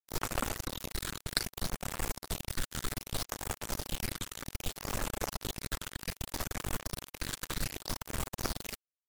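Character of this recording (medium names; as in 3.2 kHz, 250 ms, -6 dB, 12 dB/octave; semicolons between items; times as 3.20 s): tremolo saw up 3.4 Hz, depth 35%; phasing stages 8, 0.64 Hz, lowest notch 690–4700 Hz; a quantiser's noise floor 6-bit, dither none; MP3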